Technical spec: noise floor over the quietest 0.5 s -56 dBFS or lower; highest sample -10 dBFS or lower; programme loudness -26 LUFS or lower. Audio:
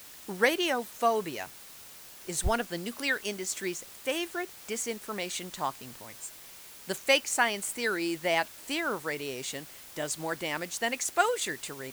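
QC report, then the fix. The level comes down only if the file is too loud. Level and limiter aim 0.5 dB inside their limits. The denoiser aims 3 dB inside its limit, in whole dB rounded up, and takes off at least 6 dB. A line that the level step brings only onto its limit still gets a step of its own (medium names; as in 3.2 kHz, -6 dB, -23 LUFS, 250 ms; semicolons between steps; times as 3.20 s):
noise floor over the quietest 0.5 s -49 dBFS: fail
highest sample -9.0 dBFS: fail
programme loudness -30.5 LUFS: pass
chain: noise reduction 10 dB, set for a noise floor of -49 dBFS; peak limiter -10.5 dBFS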